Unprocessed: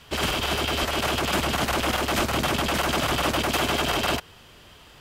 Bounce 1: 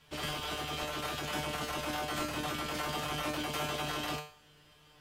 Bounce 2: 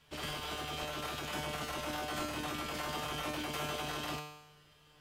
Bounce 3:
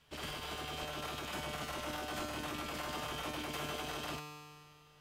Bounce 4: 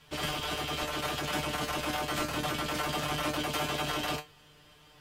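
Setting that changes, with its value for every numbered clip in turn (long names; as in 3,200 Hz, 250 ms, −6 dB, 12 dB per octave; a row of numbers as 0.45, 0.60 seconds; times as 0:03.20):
tuned comb filter, decay: 0.43, 0.91, 2, 0.18 seconds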